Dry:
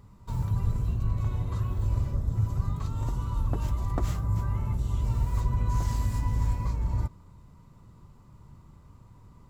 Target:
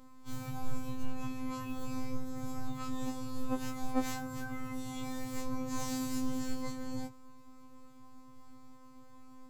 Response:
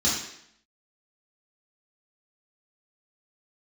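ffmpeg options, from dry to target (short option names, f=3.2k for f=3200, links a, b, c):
-af "afftfilt=real='hypot(re,im)*cos(PI*b)':imag='0':win_size=2048:overlap=0.75,afftfilt=real='re*2.45*eq(mod(b,6),0)':imag='im*2.45*eq(mod(b,6),0)':win_size=2048:overlap=0.75,volume=6.5dB"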